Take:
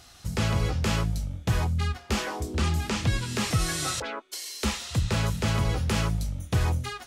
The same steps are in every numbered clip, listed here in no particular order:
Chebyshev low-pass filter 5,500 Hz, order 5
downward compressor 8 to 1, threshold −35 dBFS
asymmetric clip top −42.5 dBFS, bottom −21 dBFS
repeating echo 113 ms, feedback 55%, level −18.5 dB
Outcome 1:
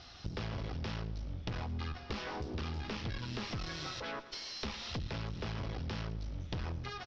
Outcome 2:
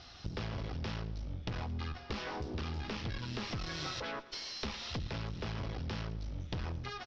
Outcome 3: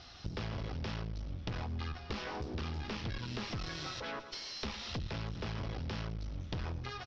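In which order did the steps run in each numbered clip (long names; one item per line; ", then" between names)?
asymmetric clip, then repeating echo, then downward compressor, then Chebyshev low-pass filter
asymmetric clip, then Chebyshev low-pass filter, then downward compressor, then repeating echo
repeating echo, then asymmetric clip, then downward compressor, then Chebyshev low-pass filter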